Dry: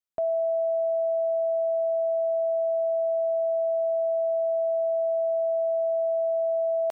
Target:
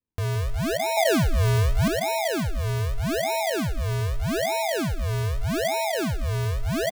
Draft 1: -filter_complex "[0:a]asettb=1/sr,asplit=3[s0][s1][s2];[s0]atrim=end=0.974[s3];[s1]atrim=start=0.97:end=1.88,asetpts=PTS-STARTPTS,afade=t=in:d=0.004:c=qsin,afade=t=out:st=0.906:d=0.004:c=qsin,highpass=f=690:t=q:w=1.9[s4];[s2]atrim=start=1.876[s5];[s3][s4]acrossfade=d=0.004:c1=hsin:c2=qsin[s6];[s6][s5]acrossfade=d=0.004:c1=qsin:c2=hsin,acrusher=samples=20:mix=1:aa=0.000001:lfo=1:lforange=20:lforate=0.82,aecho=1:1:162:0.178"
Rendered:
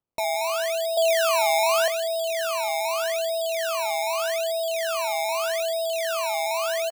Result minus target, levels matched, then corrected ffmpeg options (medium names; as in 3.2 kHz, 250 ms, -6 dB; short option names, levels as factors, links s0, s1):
decimation with a swept rate: distortion -30 dB
-filter_complex "[0:a]asettb=1/sr,asplit=3[s0][s1][s2];[s0]atrim=end=0.974[s3];[s1]atrim=start=0.97:end=1.88,asetpts=PTS-STARTPTS,afade=t=in:d=0.004:c=qsin,afade=t=out:st=0.906:d=0.004:c=qsin,highpass=f=690:t=q:w=1.9[s4];[s2]atrim=start=1.876[s5];[s3][s4]acrossfade=d=0.004:c1=hsin:c2=qsin[s6];[s6][s5]acrossfade=d=0.004:c1=qsin:c2=hsin,acrusher=samples=55:mix=1:aa=0.000001:lfo=1:lforange=55:lforate=0.82,aecho=1:1:162:0.178"